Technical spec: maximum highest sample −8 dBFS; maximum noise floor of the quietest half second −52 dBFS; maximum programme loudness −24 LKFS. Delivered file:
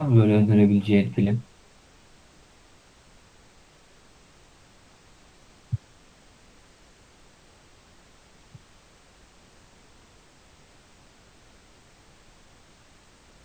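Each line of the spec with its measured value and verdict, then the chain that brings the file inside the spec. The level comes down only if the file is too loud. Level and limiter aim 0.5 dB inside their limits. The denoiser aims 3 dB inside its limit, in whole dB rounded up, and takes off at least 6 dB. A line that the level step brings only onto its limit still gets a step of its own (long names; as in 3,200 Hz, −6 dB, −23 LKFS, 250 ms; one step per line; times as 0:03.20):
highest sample −6.5 dBFS: out of spec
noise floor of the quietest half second −55 dBFS: in spec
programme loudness −21.5 LKFS: out of spec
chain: level −3 dB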